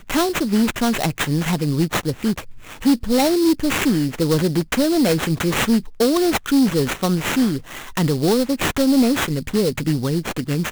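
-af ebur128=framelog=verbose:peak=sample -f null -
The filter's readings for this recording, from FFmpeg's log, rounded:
Integrated loudness:
  I:         -19.4 LUFS
  Threshold: -29.4 LUFS
Loudness range:
  LRA:         1.5 LU
  Threshold: -39.2 LUFS
  LRA low:   -20.0 LUFS
  LRA high:  -18.5 LUFS
Sample peak:
  Peak:       -6.3 dBFS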